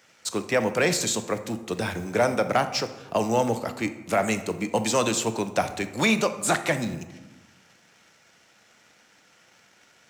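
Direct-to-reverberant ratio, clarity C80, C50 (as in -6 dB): 9.5 dB, 14.0 dB, 12.0 dB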